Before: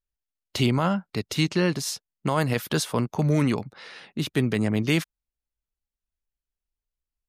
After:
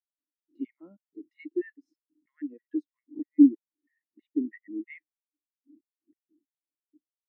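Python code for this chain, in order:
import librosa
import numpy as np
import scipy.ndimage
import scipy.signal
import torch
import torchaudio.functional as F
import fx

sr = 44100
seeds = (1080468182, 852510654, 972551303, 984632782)

y = fx.dmg_wind(x, sr, seeds[0], corner_hz=100.0, level_db=-28.0)
y = fx.filter_lfo_highpass(y, sr, shape='square', hz=3.1, low_hz=300.0, high_hz=1900.0, q=7.1)
y = fx.spectral_expand(y, sr, expansion=2.5)
y = y * librosa.db_to_amplitude(-3.0)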